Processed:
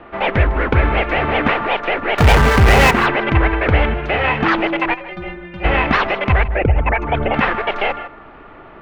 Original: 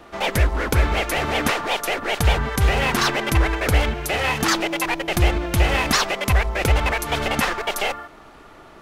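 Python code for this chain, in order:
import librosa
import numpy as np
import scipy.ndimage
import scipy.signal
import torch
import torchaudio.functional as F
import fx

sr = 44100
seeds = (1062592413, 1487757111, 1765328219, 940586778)

y = fx.envelope_sharpen(x, sr, power=2.0, at=(6.43, 7.34))
y = scipy.signal.sosfilt(scipy.signal.butter(4, 2700.0, 'lowpass', fs=sr, output='sos'), y)
y = fx.hum_notches(y, sr, base_hz=60, count=3)
y = fx.power_curve(y, sr, exponent=0.5, at=(2.18, 2.91))
y = fx.stiff_resonator(y, sr, f0_hz=180.0, decay_s=0.3, stiffness=0.008, at=(4.93, 5.63), fade=0.02)
y = y + 10.0 ** (-16.0 / 20.0) * np.pad(y, (int(155 * sr / 1000.0), 0))[:len(y)]
y = F.gain(torch.from_numpy(y), 5.5).numpy()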